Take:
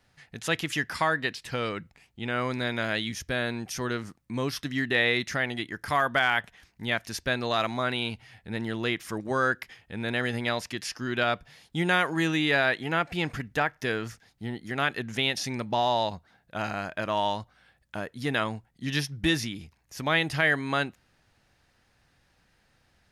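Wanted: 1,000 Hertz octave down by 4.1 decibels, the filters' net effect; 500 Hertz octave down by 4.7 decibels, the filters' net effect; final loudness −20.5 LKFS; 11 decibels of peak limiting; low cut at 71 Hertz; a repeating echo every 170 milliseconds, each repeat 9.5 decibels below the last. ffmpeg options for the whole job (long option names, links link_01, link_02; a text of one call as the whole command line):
ffmpeg -i in.wav -af "highpass=71,equalizer=frequency=500:width_type=o:gain=-5,equalizer=frequency=1000:width_type=o:gain=-4,alimiter=limit=-22.5dB:level=0:latency=1,aecho=1:1:170|340|510|680:0.335|0.111|0.0365|0.012,volume=13.5dB" out.wav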